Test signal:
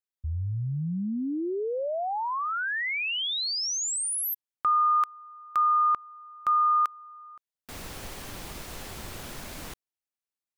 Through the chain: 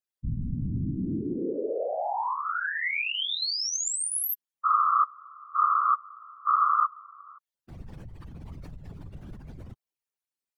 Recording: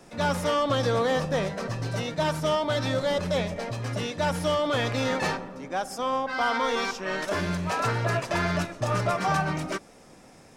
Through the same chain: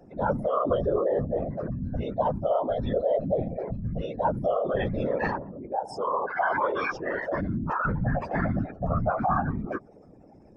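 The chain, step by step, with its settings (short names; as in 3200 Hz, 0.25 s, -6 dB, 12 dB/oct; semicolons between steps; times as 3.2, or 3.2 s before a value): spectral contrast raised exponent 2.6; whisperiser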